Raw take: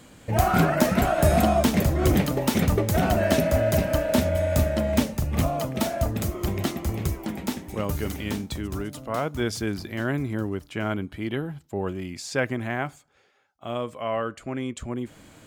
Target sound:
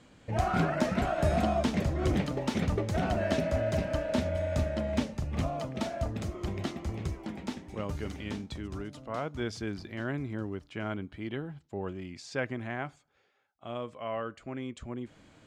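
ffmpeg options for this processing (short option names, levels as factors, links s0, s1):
-af "lowpass=5800,volume=0.422"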